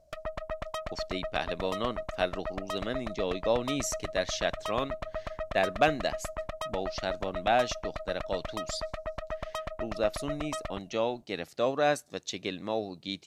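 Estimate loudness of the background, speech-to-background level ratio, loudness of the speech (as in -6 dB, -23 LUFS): -38.0 LUFS, 5.5 dB, -32.5 LUFS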